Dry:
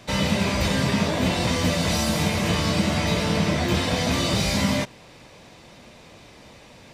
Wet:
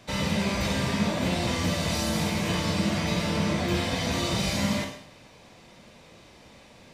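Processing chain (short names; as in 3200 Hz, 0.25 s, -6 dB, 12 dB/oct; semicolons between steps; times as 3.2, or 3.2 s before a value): Schroeder reverb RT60 0.63 s, combs from 33 ms, DRR 4.5 dB; gain -5.5 dB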